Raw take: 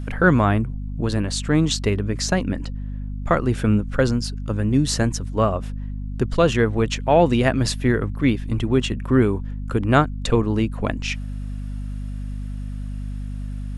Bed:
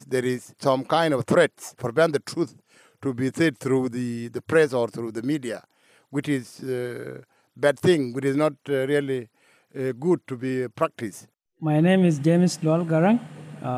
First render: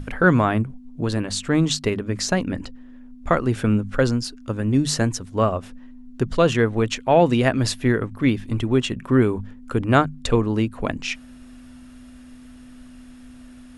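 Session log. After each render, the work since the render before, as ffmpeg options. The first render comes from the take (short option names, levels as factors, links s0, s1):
-af "bandreject=f=50:t=h:w=6,bandreject=f=100:t=h:w=6,bandreject=f=150:t=h:w=6,bandreject=f=200:t=h:w=6"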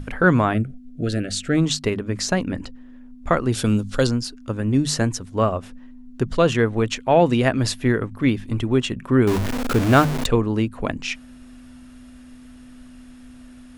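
-filter_complex "[0:a]asplit=3[s0][s1][s2];[s0]afade=t=out:st=0.53:d=0.02[s3];[s1]asuperstop=centerf=970:order=12:qfactor=1.9,afade=t=in:st=0.53:d=0.02,afade=t=out:st=1.56:d=0.02[s4];[s2]afade=t=in:st=1.56:d=0.02[s5];[s3][s4][s5]amix=inputs=3:normalize=0,asettb=1/sr,asplit=3[s6][s7][s8];[s6]atrim=end=3.524[s9];[s7]atrim=start=3.52:end=4.07,asetpts=PTS-STARTPTS,afade=t=in:d=0.004:c=qsin,afade=t=out:st=0.546:d=0.004:c=qsin,highshelf=f=2900:t=q:w=1.5:g=11[s10];[s8]atrim=start=4.066[s11];[s9][s10]acrossfade=d=0.004:c1=hsin:c2=qsin[s12];[s12][s11]acrossfade=d=0.004:c1=qsin:c2=hsin,asettb=1/sr,asplit=3[s13][s14][s15];[s13]atrim=end=9.274[s16];[s14]atrim=start=9.27:end=10.26,asetpts=PTS-STARTPTS,afade=t=in:d=0.004:c=qsin,afade=t=out:st=0.986:d=0.004:c=qsin,aeval=exprs='val(0)+0.5*0.112*sgn(val(0))':c=same[s17];[s15]atrim=start=10.256[s18];[s16][s17]acrossfade=d=0.004:c1=hsin:c2=qsin[s19];[s19][s18]acrossfade=d=0.004:c1=qsin:c2=hsin"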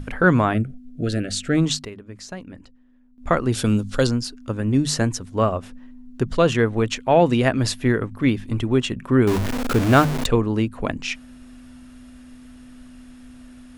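-filter_complex "[0:a]asplit=3[s0][s1][s2];[s0]atrim=end=1.85,asetpts=PTS-STARTPTS,afade=t=out:st=1.62:d=0.23:c=log:silence=0.211349[s3];[s1]atrim=start=1.85:end=3.18,asetpts=PTS-STARTPTS,volume=0.211[s4];[s2]atrim=start=3.18,asetpts=PTS-STARTPTS,afade=t=in:d=0.23:c=log:silence=0.211349[s5];[s3][s4][s5]concat=n=3:v=0:a=1"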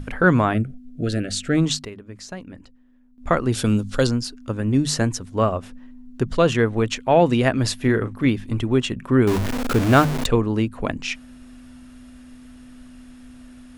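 -filter_complex "[0:a]asettb=1/sr,asplit=3[s0][s1][s2];[s0]atrim=end=7.774[s3];[s1]atrim=start=7.77:end=8.27,asetpts=PTS-STARTPTS,afade=t=in:d=0.004:c=qsin,afade=t=out:st=0.496:d=0.004:c=qsin,asplit=2[s4][s5];[s5]adelay=36,volume=0.355[s6];[s4][s6]amix=inputs=2:normalize=0,atrim=end_sample=22050[s7];[s2]atrim=start=8.266[s8];[s3][s7]acrossfade=d=0.004:c1=hsin:c2=qsin[s9];[s9][s8]acrossfade=d=0.004:c1=qsin:c2=hsin"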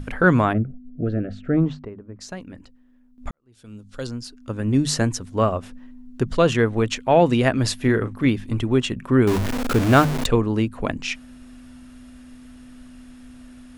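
-filter_complex "[0:a]asplit=3[s0][s1][s2];[s0]afade=t=out:st=0.52:d=0.02[s3];[s1]lowpass=1100,afade=t=in:st=0.52:d=0.02,afade=t=out:st=2.2:d=0.02[s4];[s2]afade=t=in:st=2.2:d=0.02[s5];[s3][s4][s5]amix=inputs=3:normalize=0,asplit=2[s6][s7];[s6]atrim=end=3.31,asetpts=PTS-STARTPTS,afade=t=out:st=3.306:d=0.004:c=hsin[s8];[s7]atrim=start=3.31,asetpts=PTS-STARTPTS,afade=t=in:d=1.41:c=qua[s9];[s8][s9]concat=n=2:v=0:a=1"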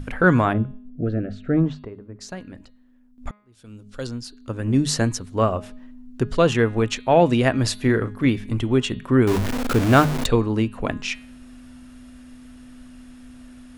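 -af "bandreject=f=208.1:t=h:w=4,bandreject=f=416.2:t=h:w=4,bandreject=f=624.3:t=h:w=4,bandreject=f=832.4:t=h:w=4,bandreject=f=1040.5:t=h:w=4,bandreject=f=1248.6:t=h:w=4,bandreject=f=1456.7:t=h:w=4,bandreject=f=1664.8:t=h:w=4,bandreject=f=1872.9:t=h:w=4,bandreject=f=2081:t=h:w=4,bandreject=f=2289.1:t=h:w=4,bandreject=f=2497.2:t=h:w=4,bandreject=f=2705.3:t=h:w=4,bandreject=f=2913.4:t=h:w=4,bandreject=f=3121.5:t=h:w=4,bandreject=f=3329.6:t=h:w=4,bandreject=f=3537.7:t=h:w=4,bandreject=f=3745.8:t=h:w=4,bandreject=f=3953.9:t=h:w=4,bandreject=f=4162:t=h:w=4,bandreject=f=4370.1:t=h:w=4,bandreject=f=4578.2:t=h:w=4"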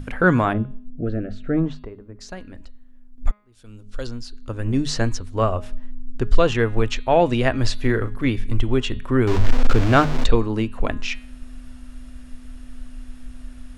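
-filter_complex "[0:a]acrossover=split=6800[s0][s1];[s1]acompressor=threshold=0.002:ratio=4:attack=1:release=60[s2];[s0][s2]amix=inputs=2:normalize=0,asubboost=boost=9.5:cutoff=51"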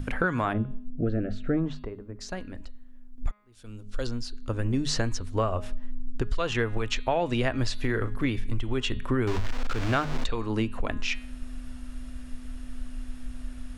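-filter_complex "[0:a]acrossover=split=840[s0][s1];[s0]alimiter=limit=0.237:level=0:latency=1:release=398[s2];[s2][s1]amix=inputs=2:normalize=0,acompressor=threshold=0.0794:ratio=5"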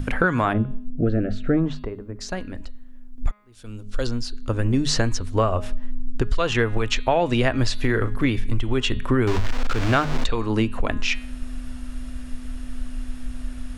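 -af "volume=2"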